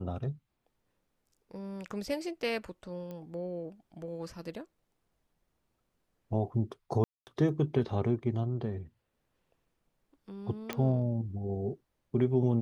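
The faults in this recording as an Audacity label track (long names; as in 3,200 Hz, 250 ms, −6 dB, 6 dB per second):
3.110000	3.110000	click −30 dBFS
7.040000	7.270000	drop-out 229 ms
10.730000	10.730000	click −19 dBFS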